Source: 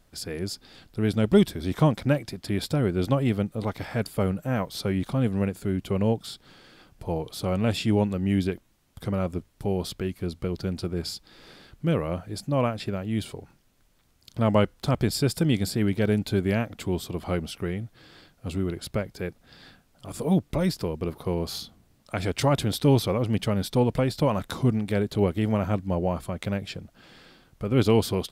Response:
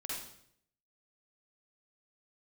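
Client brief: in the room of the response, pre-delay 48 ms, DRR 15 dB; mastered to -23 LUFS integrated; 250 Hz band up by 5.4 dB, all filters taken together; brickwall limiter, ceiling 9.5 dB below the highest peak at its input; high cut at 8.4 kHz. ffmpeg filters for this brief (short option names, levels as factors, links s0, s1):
-filter_complex "[0:a]lowpass=8400,equalizer=f=250:t=o:g=7,alimiter=limit=0.211:level=0:latency=1,asplit=2[s0][s1];[1:a]atrim=start_sample=2205,adelay=48[s2];[s1][s2]afir=irnorm=-1:irlink=0,volume=0.168[s3];[s0][s3]amix=inputs=2:normalize=0,volume=1.33"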